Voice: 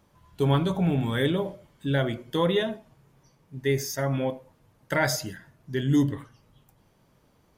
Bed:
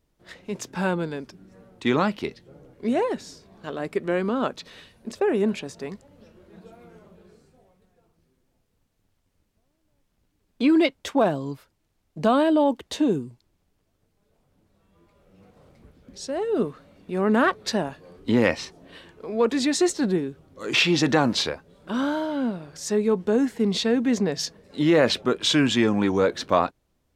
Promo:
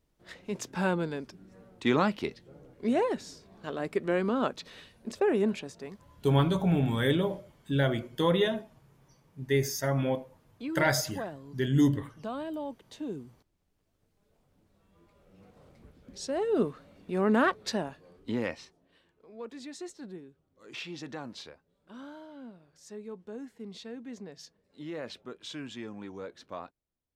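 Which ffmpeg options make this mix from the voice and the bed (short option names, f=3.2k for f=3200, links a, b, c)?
-filter_complex "[0:a]adelay=5850,volume=-1.5dB[a];[1:a]volume=10.5dB,afade=t=out:st=5.32:d=1:silence=0.211349,afade=t=in:st=13:d=1.19:silence=0.199526,afade=t=out:st=17.05:d=1.82:silence=0.133352[b];[a][b]amix=inputs=2:normalize=0"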